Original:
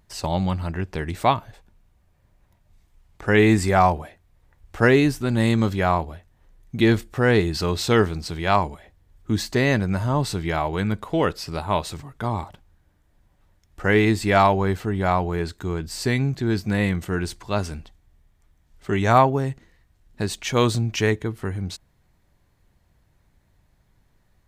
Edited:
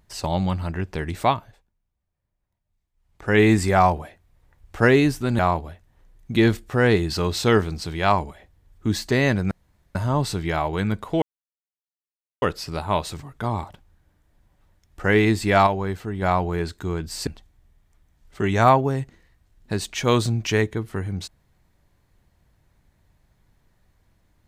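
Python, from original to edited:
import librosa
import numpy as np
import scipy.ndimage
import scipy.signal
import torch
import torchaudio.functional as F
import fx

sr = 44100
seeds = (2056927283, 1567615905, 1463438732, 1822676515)

y = fx.edit(x, sr, fx.fade_down_up(start_s=1.23, length_s=2.17, db=-18.5, fade_s=0.46),
    fx.cut(start_s=5.39, length_s=0.44),
    fx.insert_room_tone(at_s=9.95, length_s=0.44),
    fx.insert_silence(at_s=11.22, length_s=1.2),
    fx.clip_gain(start_s=14.47, length_s=0.55, db=-4.5),
    fx.cut(start_s=16.07, length_s=1.69), tone=tone)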